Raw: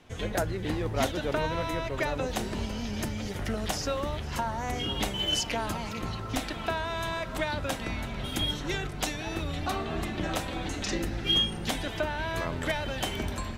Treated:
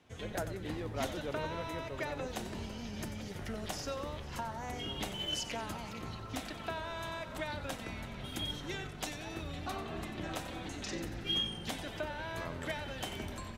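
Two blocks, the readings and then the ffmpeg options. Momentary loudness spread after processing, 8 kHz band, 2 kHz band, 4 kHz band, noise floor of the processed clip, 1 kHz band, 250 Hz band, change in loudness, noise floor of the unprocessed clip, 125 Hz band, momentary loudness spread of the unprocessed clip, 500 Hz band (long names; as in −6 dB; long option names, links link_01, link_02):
6 LU, −8.0 dB, −8.0 dB, −8.0 dB, −45 dBFS, −8.0 dB, −8.0 dB, −8.5 dB, −37 dBFS, −9.0 dB, 6 LU, −8.0 dB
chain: -filter_complex "[0:a]highpass=55,asplit=6[link_01][link_02][link_03][link_04][link_05][link_06];[link_02]adelay=92,afreqshift=-45,volume=-11.5dB[link_07];[link_03]adelay=184,afreqshift=-90,volume=-18.4dB[link_08];[link_04]adelay=276,afreqshift=-135,volume=-25.4dB[link_09];[link_05]adelay=368,afreqshift=-180,volume=-32.3dB[link_10];[link_06]adelay=460,afreqshift=-225,volume=-39.2dB[link_11];[link_01][link_07][link_08][link_09][link_10][link_11]amix=inputs=6:normalize=0,volume=-8.5dB"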